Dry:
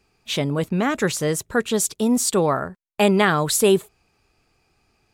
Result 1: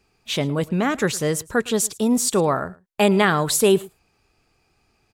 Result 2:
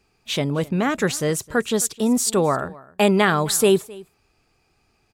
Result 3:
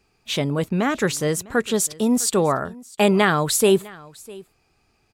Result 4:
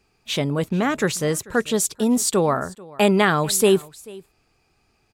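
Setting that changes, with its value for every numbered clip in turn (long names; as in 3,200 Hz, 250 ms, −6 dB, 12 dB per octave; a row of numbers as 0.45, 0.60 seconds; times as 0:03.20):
single-tap delay, delay time: 109, 262, 653, 439 milliseconds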